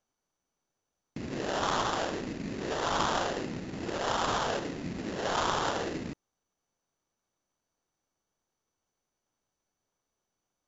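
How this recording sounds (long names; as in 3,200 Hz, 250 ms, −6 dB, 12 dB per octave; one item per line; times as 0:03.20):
aliases and images of a low sample rate 2,300 Hz, jitter 20%
MP2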